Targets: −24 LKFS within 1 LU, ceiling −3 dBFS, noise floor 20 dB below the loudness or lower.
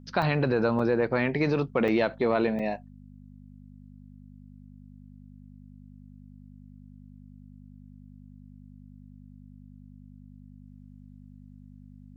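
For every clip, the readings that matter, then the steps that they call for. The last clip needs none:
number of dropouts 4; longest dropout 4.4 ms; mains hum 50 Hz; hum harmonics up to 250 Hz; level of the hum −47 dBFS; integrated loudness −26.0 LKFS; sample peak −10.5 dBFS; target loudness −24.0 LKFS
→ repair the gap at 0:00.22/0:00.79/0:01.88/0:02.59, 4.4 ms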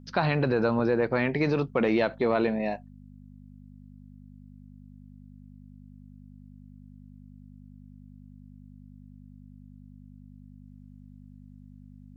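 number of dropouts 0; mains hum 50 Hz; hum harmonics up to 250 Hz; level of the hum −47 dBFS
→ hum removal 50 Hz, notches 5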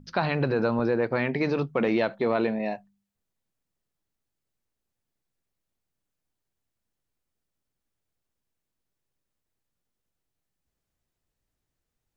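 mains hum none found; integrated loudness −26.0 LKFS; sample peak −11.0 dBFS; target loudness −24.0 LKFS
→ level +2 dB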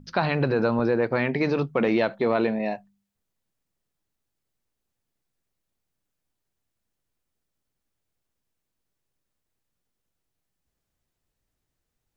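integrated loudness −24.0 LKFS; sample peak −9.0 dBFS; background noise floor −82 dBFS

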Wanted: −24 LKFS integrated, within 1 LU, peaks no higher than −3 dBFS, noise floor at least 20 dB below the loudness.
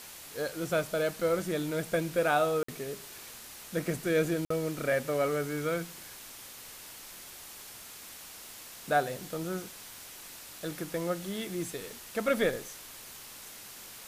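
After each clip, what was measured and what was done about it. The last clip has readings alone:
number of dropouts 2; longest dropout 54 ms; background noise floor −48 dBFS; target noise floor −52 dBFS; integrated loudness −32.0 LKFS; sample peak −13.5 dBFS; target loudness −24.0 LKFS
→ repair the gap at 0:02.63/0:04.45, 54 ms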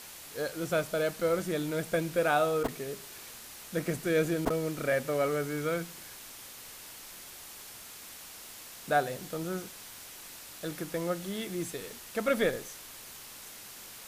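number of dropouts 0; background noise floor −48 dBFS; target noise floor −52 dBFS
→ broadband denoise 6 dB, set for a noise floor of −48 dBFS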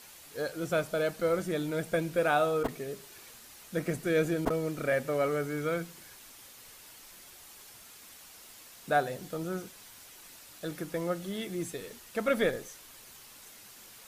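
background noise floor −52 dBFS; integrated loudness −32.0 LKFS; sample peak −13.5 dBFS; target loudness −24.0 LKFS
→ level +8 dB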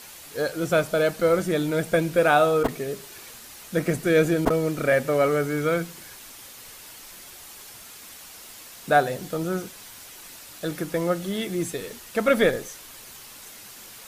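integrated loudness −24.0 LKFS; sample peak −5.5 dBFS; background noise floor −44 dBFS

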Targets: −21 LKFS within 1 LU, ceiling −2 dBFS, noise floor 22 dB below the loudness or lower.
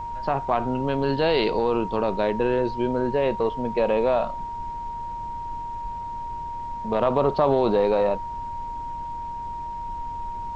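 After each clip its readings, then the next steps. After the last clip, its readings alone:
interfering tone 940 Hz; level of the tone −30 dBFS; background noise floor −33 dBFS; target noise floor −48 dBFS; integrated loudness −25.5 LKFS; sample peak −7.5 dBFS; target loudness −21.0 LKFS
→ notch filter 940 Hz, Q 30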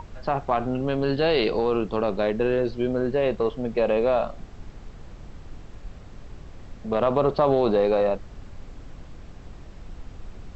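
interfering tone none found; background noise floor −44 dBFS; target noise floor −46 dBFS
→ noise reduction from a noise print 6 dB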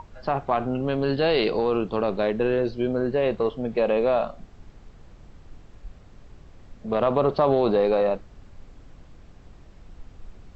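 background noise floor −49 dBFS; integrated loudness −24.0 LKFS; sample peak −8.5 dBFS; target loudness −21.0 LKFS
→ level +3 dB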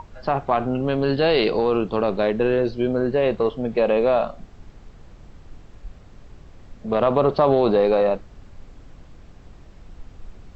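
integrated loudness −21.0 LKFS; sample peak −5.5 dBFS; background noise floor −46 dBFS

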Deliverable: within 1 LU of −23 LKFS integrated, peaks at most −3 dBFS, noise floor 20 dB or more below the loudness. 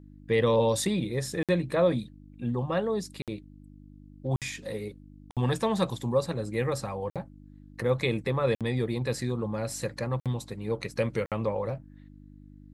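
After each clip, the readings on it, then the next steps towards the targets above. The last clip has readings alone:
number of dropouts 8; longest dropout 57 ms; mains hum 50 Hz; hum harmonics up to 300 Hz; level of the hum −50 dBFS; integrated loudness −29.5 LKFS; sample peak −12.5 dBFS; target loudness −23.0 LKFS
→ repair the gap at 0:01.43/0:03.22/0:04.36/0:05.31/0:07.10/0:08.55/0:10.20/0:11.26, 57 ms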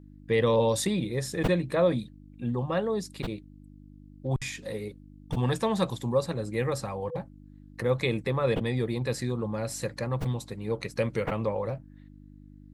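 number of dropouts 0; mains hum 50 Hz; hum harmonics up to 300 Hz; level of the hum −50 dBFS
→ hum removal 50 Hz, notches 6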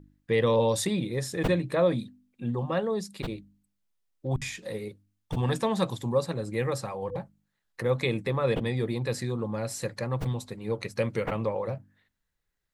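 mains hum none found; integrated loudness −29.5 LKFS; sample peak −12.5 dBFS; target loudness −23.0 LKFS
→ level +6.5 dB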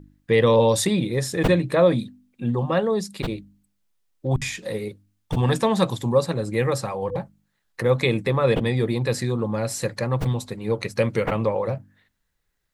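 integrated loudness −23.0 LKFS; sample peak −6.0 dBFS; background noise floor −73 dBFS

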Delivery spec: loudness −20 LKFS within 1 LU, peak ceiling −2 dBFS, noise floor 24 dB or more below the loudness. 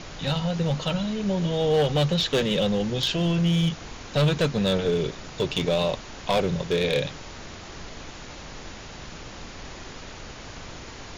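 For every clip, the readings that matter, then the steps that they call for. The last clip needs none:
share of clipped samples 1.3%; peaks flattened at −16.5 dBFS; background noise floor −41 dBFS; target noise floor −49 dBFS; integrated loudness −24.5 LKFS; sample peak −16.5 dBFS; target loudness −20.0 LKFS
→ clipped peaks rebuilt −16.5 dBFS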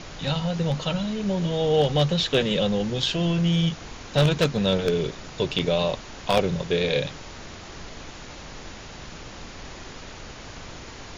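share of clipped samples 0.0%; background noise floor −41 dBFS; target noise floor −48 dBFS
→ noise reduction from a noise print 7 dB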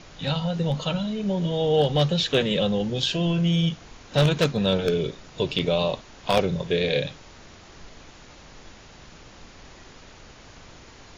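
background noise floor −48 dBFS; integrated loudness −24.0 LKFS; sample peak −7.5 dBFS; target loudness −20.0 LKFS
→ level +4 dB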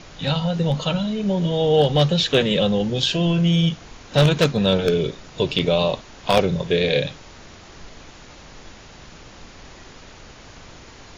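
integrated loudness −20.0 LKFS; sample peak −3.5 dBFS; background noise floor −44 dBFS

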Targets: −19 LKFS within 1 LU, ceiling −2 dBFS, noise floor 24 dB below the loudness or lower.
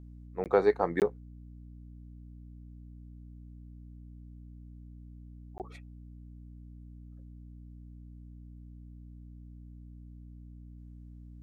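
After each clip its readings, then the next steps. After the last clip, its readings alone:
number of dropouts 3; longest dropout 18 ms; mains hum 60 Hz; hum harmonics up to 300 Hz; level of the hum −46 dBFS; integrated loudness −30.5 LKFS; sample peak −10.0 dBFS; target loudness −19.0 LKFS
→ repair the gap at 0:00.44/0:01.00/0:05.58, 18 ms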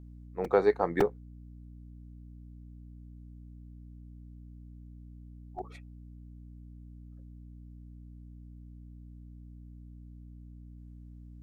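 number of dropouts 0; mains hum 60 Hz; hum harmonics up to 300 Hz; level of the hum −46 dBFS
→ hum removal 60 Hz, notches 5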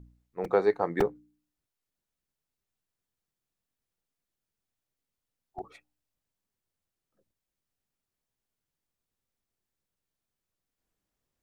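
mains hum none found; integrated loudness −28.5 LKFS; sample peak −10.0 dBFS; target loudness −19.0 LKFS
→ level +9.5 dB
brickwall limiter −2 dBFS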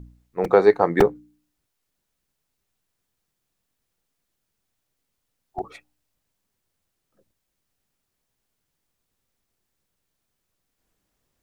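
integrated loudness −19.0 LKFS; sample peak −2.0 dBFS; background noise floor −79 dBFS

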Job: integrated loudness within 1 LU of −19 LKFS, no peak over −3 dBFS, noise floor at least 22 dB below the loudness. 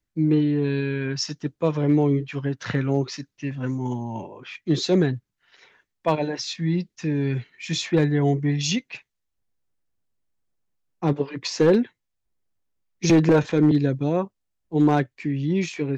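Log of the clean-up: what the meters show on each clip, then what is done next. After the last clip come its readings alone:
share of clipped samples 0.4%; peaks flattened at −11.0 dBFS; integrated loudness −23.5 LKFS; sample peak −11.0 dBFS; target loudness −19.0 LKFS
→ clipped peaks rebuilt −11 dBFS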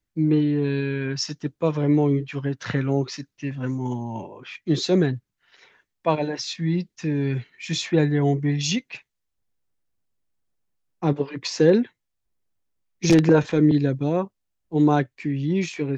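share of clipped samples 0.0%; integrated loudness −23.0 LKFS; sample peak −3.0 dBFS; target loudness −19.0 LKFS
→ level +4 dB
brickwall limiter −3 dBFS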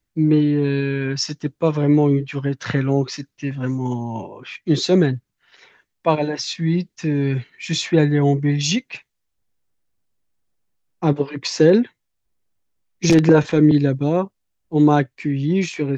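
integrated loudness −19.5 LKFS; sample peak −3.0 dBFS; background noise floor −75 dBFS

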